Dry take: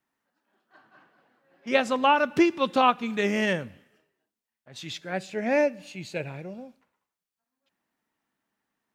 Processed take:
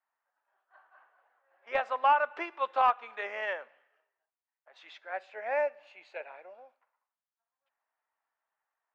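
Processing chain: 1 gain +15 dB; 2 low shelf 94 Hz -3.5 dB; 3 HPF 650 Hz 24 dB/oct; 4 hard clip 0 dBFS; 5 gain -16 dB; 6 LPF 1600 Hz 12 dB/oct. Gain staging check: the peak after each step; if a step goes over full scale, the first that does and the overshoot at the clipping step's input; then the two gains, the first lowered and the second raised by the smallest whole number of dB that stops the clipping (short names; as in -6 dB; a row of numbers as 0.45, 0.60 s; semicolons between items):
+8.0, +8.0, +7.0, 0.0, -16.0, -15.5 dBFS; step 1, 7.0 dB; step 1 +8 dB, step 5 -9 dB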